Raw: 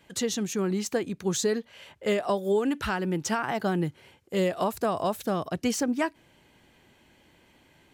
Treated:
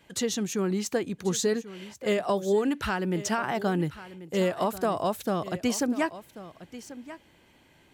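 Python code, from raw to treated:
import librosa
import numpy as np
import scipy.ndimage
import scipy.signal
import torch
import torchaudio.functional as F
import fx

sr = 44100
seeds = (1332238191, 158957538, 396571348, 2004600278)

y = x + 10.0 ** (-15.5 / 20.0) * np.pad(x, (int(1088 * sr / 1000.0), 0))[:len(x)]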